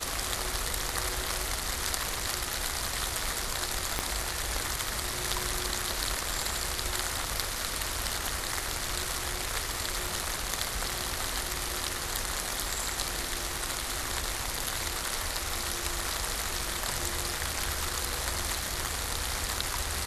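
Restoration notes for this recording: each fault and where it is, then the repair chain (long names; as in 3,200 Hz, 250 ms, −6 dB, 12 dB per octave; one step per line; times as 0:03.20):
0:03.99: click −11 dBFS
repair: click removal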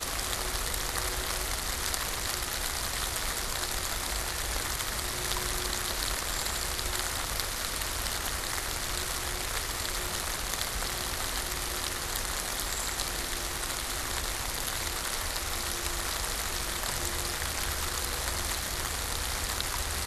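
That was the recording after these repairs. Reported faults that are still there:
0:03.99: click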